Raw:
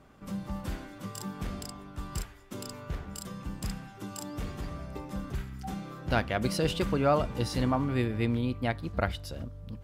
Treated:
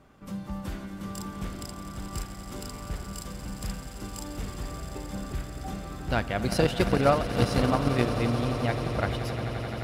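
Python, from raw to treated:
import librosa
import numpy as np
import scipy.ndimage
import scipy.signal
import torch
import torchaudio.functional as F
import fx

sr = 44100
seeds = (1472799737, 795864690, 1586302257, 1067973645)

y = fx.echo_swell(x, sr, ms=87, loudest=8, wet_db=-13)
y = fx.transient(y, sr, attack_db=11, sustain_db=-4, at=(6.5, 8.06))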